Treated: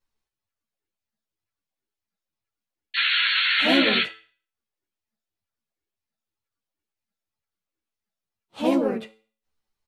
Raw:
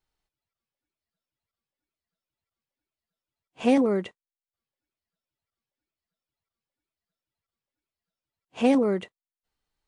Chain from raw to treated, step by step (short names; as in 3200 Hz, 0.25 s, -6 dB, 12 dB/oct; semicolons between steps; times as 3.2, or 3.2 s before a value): painted sound noise, 2.96–4.04, 1300–3500 Hz -21 dBFS; harmoniser -5 st -17 dB, +3 st -11 dB, +4 st -1 dB; resonator 110 Hz, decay 0.43 s, harmonics all, mix 60%; ensemble effect; gain +5.5 dB